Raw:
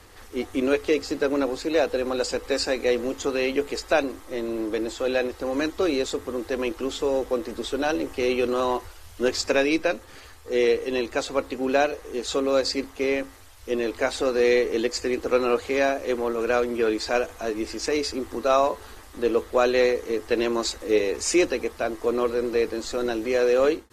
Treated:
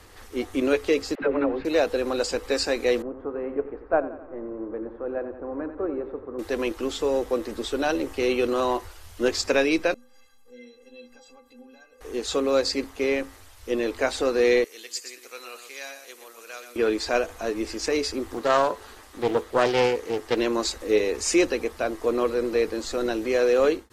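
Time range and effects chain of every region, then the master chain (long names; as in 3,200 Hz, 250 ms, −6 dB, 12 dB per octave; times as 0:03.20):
0:01.15–0:01.65: low-pass filter 2,600 Hz 24 dB per octave + all-pass dispersion lows, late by 73 ms, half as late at 430 Hz
0:03.02–0:06.39: repeating echo 89 ms, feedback 56%, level −10 dB + noise gate −21 dBFS, range −6 dB + low-pass filter 1,400 Hz 24 dB per octave
0:09.94–0:12.01: downward compressor 3 to 1, threshold −33 dBFS + stiff-string resonator 240 Hz, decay 0.38 s, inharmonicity 0.03
0:14.64–0:16.76: first difference + single-tap delay 120 ms −8.5 dB
0:18.34–0:20.37: low-shelf EQ 160 Hz −8 dB + highs frequency-modulated by the lows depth 0.34 ms
whole clip: no processing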